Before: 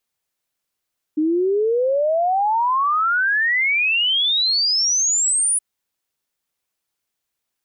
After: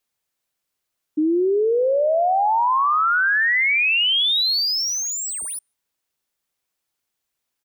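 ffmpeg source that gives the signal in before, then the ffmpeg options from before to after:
-f lavfi -i "aevalsrc='0.168*clip(min(t,4.42-t)/0.01,0,1)*sin(2*PI*300*4.42/log(10000/300)*(exp(log(10000/300)*t/4.42)-1))':duration=4.42:sample_rate=44100"
-filter_complex "[0:a]acrossover=split=510|4800[link_01][link_02][link_03];[link_02]asplit=2[link_04][link_05];[link_05]adelay=148,lowpass=frequency=900:poles=1,volume=-8dB,asplit=2[link_06][link_07];[link_07]adelay=148,lowpass=frequency=900:poles=1,volume=0.39,asplit=2[link_08][link_09];[link_09]adelay=148,lowpass=frequency=900:poles=1,volume=0.39,asplit=2[link_10][link_11];[link_11]adelay=148,lowpass=frequency=900:poles=1,volume=0.39[link_12];[link_04][link_06][link_08][link_10][link_12]amix=inputs=5:normalize=0[link_13];[link_03]asoftclip=type=tanh:threshold=-29.5dB[link_14];[link_01][link_13][link_14]amix=inputs=3:normalize=0"

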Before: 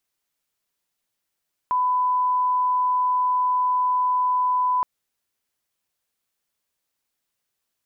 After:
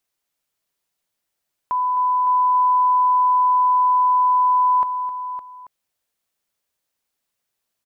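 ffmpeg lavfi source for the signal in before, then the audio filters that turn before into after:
-f lavfi -i "sine=frequency=1000:duration=3.12:sample_rate=44100,volume=0.06dB"
-filter_complex "[0:a]equalizer=frequency=640:width_type=o:width=0.77:gain=2.5,asplit=2[link_01][link_02];[link_02]aecho=0:1:261|561|837:0.237|0.299|0.112[link_03];[link_01][link_03]amix=inputs=2:normalize=0"

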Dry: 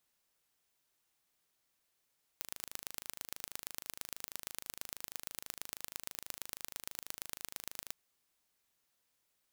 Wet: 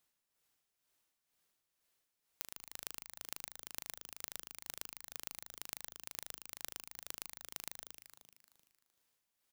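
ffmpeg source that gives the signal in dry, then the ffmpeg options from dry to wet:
-f lavfi -i "aevalsrc='0.266*eq(mod(n,1683),0)*(0.5+0.5*eq(mod(n,5049),0))':duration=5.52:sample_rate=44100"
-filter_complex "[0:a]tremolo=f=2.1:d=0.75,asplit=2[link_01][link_02];[link_02]asplit=8[link_03][link_04][link_05][link_06][link_07][link_08][link_09][link_10];[link_03]adelay=153,afreqshift=-55,volume=-8dB[link_11];[link_04]adelay=306,afreqshift=-110,volume=-12.3dB[link_12];[link_05]adelay=459,afreqshift=-165,volume=-16.6dB[link_13];[link_06]adelay=612,afreqshift=-220,volume=-20.9dB[link_14];[link_07]adelay=765,afreqshift=-275,volume=-25.2dB[link_15];[link_08]adelay=918,afreqshift=-330,volume=-29.5dB[link_16];[link_09]adelay=1071,afreqshift=-385,volume=-33.8dB[link_17];[link_10]adelay=1224,afreqshift=-440,volume=-38.1dB[link_18];[link_11][link_12][link_13][link_14][link_15][link_16][link_17][link_18]amix=inputs=8:normalize=0[link_19];[link_01][link_19]amix=inputs=2:normalize=0"

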